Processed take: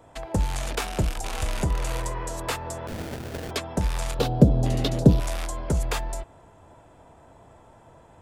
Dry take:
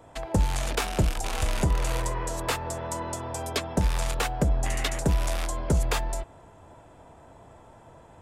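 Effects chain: 2.87–3.51 sample-rate reducer 1100 Hz, jitter 20%; 4.19–5.2 graphic EQ 125/250/500/1000/2000/4000/8000 Hz +11/+11/+8/-3/-10/+8/-9 dB; gain -1 dB

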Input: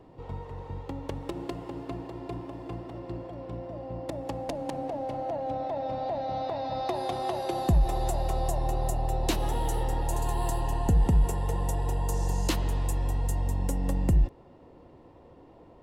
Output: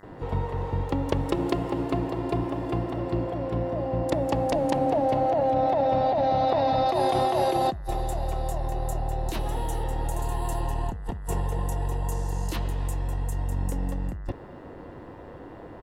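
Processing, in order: negative-ratio compressor -32 dBFS, ratio -1; bands offset in time highs, lows 30 ms, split 5500 Hz; buzz 100 Hz, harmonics 20, -61 dBFS -1 dB/oct; gain +6 dB

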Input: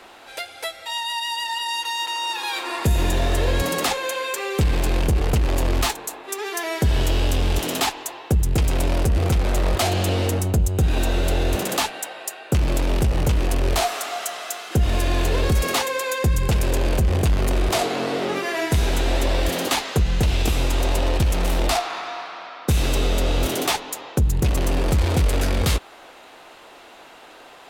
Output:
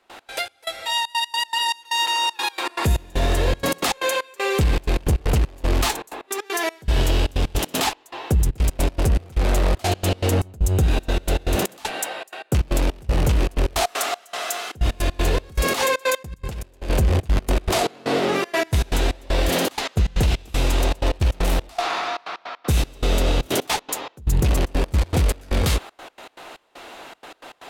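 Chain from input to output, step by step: 15.69–16.9 negative-ratio compressor -25 dBFS, ratio -0.5; limiter -16 dBFS, peak gain reduction 7.5 dB; step gate ".x.xx..xxxx.x" 157 bpm -24 dB; gain +5 dB

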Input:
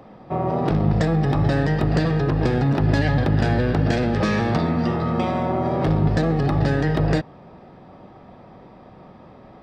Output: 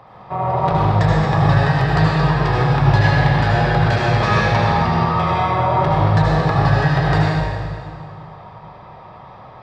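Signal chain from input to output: ten-band EQ 125 Hz +8 dB, 250 Hz -11 dB, 1000 Hz +12 dB, 2000 Hz +4 dB, 4000 Hz +6 dB; reverb RT60 2.0 s, pre-delay 69 ms, DRR -4.5 dB; gain -4.5 dB

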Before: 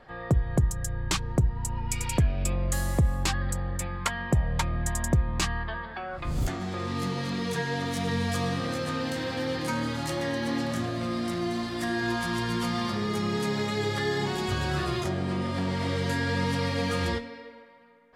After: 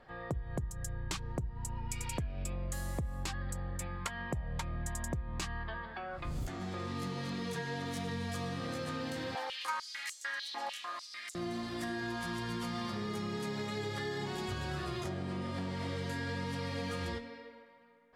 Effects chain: compressor 5:1, threshold -28 dBFS, peak gain reduction 9.5 dB; 9.35–11.35 stepped high-pass 6.7 Hz 800–7100 Hz; gain -6 dB

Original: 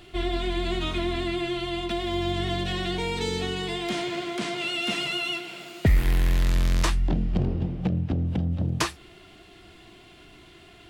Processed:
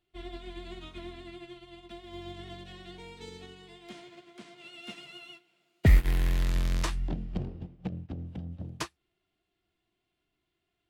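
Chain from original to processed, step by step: upward expander 2.5:1, over -37 dBFS; gain +1.5 dB

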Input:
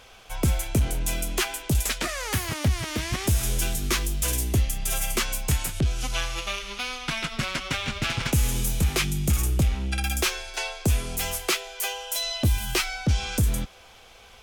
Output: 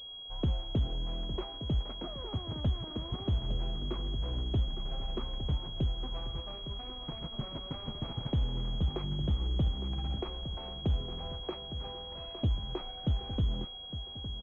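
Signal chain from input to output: median filter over 25 samples; feedback echo 0.86 s, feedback 51%, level -11 dB; pulse-width modulation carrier 3300 Hz; gain -7.5 dB

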